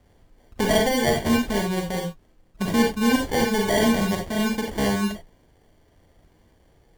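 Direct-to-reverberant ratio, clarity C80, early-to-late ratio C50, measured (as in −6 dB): 1.5 dB, 12.5 dB, 4.5 dB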